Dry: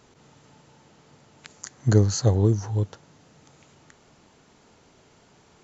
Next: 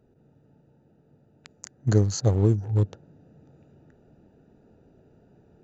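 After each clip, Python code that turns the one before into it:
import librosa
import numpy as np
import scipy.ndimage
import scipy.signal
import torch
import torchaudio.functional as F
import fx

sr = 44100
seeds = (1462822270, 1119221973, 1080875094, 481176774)

y = fx.wiener(x, sr, points=41)
y = fx.rider(y, sr, range_db=10, speed_s=0.5)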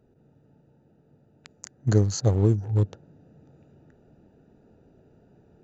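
y = x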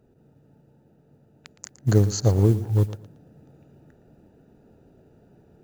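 y = fx.mod_noise(x, sr, seeds[0], snr_db=31)
y = fx.echo_feedback(y, sr, ms=115, feedback_pct=25, wet_db=-15.5)
y = y * 10.0 ** (2.0 / 20.0)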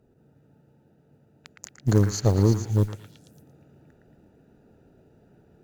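y = fx.cheby_harmonics(x, sr, harmonics=(6,), levels_db=(-22,), full_scale_db=-4.5)
y = fx.echo_stepped(y, sr, ms=113, hz=1700.0, octaves=0.7, feedback_pct=70, wet_db=-1)
y = y * 10.0 ** (-2.0 / 20.0)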